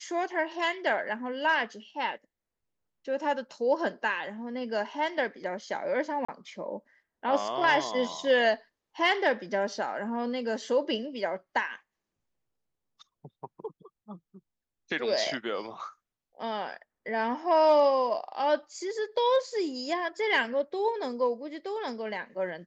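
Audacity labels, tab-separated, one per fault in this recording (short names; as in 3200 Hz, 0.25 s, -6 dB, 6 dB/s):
6.250000	6.290000	gap 35 ms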